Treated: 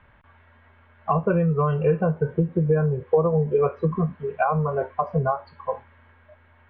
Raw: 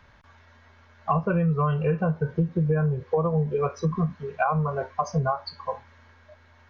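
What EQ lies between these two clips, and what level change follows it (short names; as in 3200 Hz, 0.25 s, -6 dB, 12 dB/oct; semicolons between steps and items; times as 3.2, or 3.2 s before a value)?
steep low-pass 3200 Hz 36 dB/oct; dynamic EQ 420 Hz, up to +6 dB, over -39 dBFS, Q 0.97; air absorption 63 m; 0.0 dB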